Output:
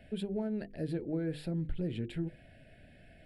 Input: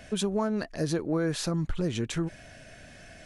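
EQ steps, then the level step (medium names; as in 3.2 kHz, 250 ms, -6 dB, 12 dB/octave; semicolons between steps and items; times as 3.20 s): treble shelf 2.1 kHz -9.5 dB; hum notches 50/100/150/200/250/300/350/400/450/500 Hz; static phaser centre 2.7 kHz, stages 4; -4.5 dB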